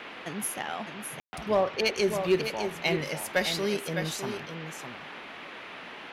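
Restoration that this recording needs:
clipped peaks rebuilt −16 dBFS
ambience match 0:01.20–0:01.33
noise reduction from a noise print 30 dB
echo removal 608 ms −7.5 dB

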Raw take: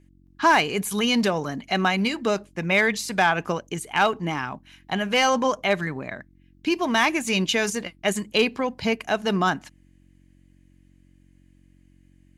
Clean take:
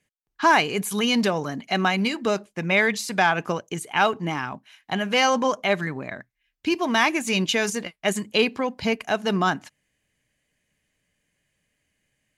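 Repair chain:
clipped peaks rebuilt −10.5 dBFS
hum removal 45.8 Hz, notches 7

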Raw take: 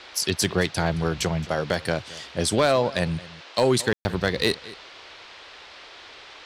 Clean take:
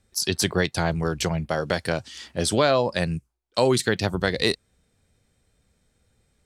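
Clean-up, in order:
clipped peaks rebuilt −11 dBFS
ambience match 0:03.93–0:04.05
noise reduction from a noise print 23 dB
echo removal 220 ms −19.5 dB

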